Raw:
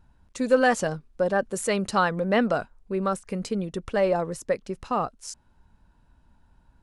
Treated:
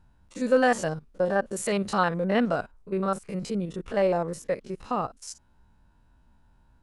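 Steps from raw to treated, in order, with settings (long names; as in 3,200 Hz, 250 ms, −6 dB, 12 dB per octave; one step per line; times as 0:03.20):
spectrum averaged block by block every 50 ms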